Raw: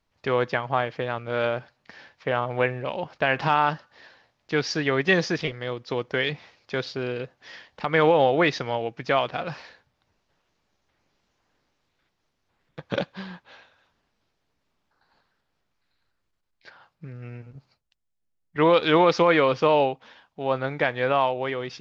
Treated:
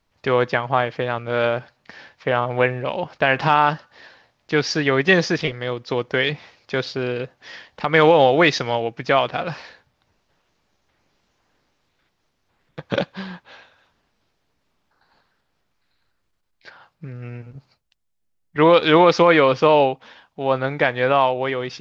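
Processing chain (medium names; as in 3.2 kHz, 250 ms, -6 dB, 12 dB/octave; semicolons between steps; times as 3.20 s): 7.94–8.80 s: treble shelf 4.2 kHz +7.5 dB; trim +5 dB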